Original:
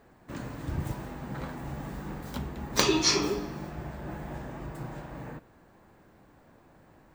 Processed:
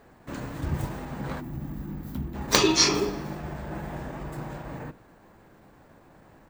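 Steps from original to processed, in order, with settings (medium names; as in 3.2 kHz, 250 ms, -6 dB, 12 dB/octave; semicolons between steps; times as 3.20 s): hum notches 60/120/180/240/300/360 Hz; time-frequency box 1.54–2.57 s, 370–11000 Hz -11 dB; tempo 1.1×; trim +4 dB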